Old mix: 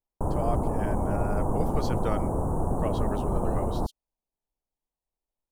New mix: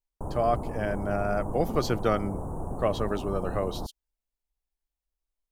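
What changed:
speech +6.5 dB; background -7.0 dB

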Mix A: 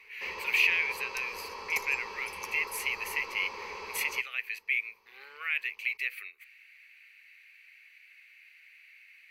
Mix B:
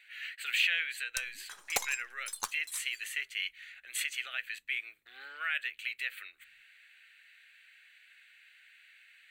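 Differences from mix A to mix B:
first sound: muted; second sound +10.0 dB; master: remove rippled EQ curve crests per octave 0.83, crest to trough 14 dB

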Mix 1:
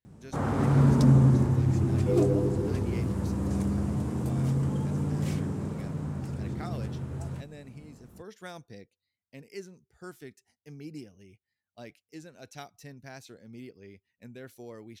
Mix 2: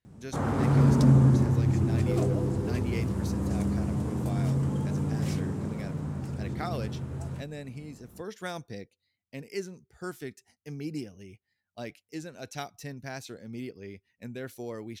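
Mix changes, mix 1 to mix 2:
speech +6.5 dB; second sound: add tilt EQ +4.5 dB/octave

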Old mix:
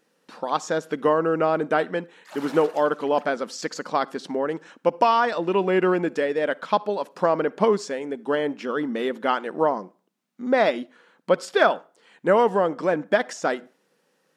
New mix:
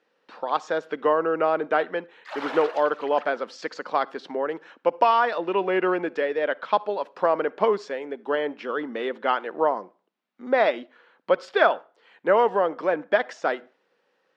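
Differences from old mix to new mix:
background +7.5 dB; master: add three-band isolator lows -13 dB, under 330 Hz, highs -24 dB, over 4.5 kHz

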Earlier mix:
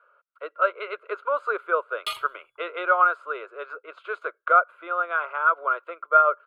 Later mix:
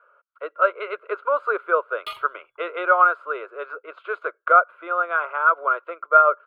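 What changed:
speech +4.0 dB; master: add peaking EQ 8 kHz -13 dB 1.8 oct

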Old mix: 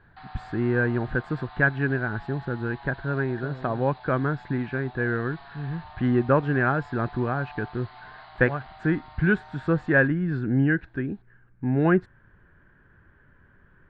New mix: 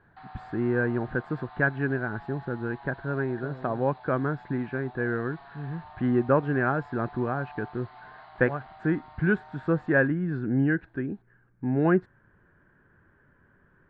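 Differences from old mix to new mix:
speech: add bass shelf 91 Hz -12 dB; master: add treble shelf 2.3 kHz -11 dB

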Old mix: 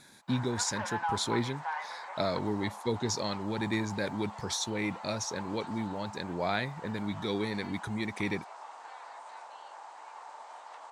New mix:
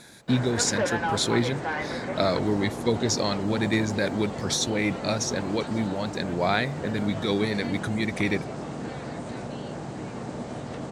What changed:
speech +7.0 dB; background: remove ladder high-pass 830 Hz, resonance 65%

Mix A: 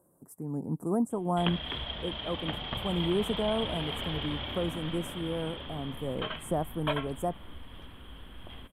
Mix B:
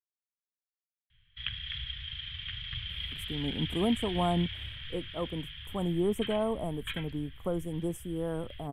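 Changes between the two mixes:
speech: entry +2.90 s; background: add Chebyshev band-stop 120–1800 Hz, order 3

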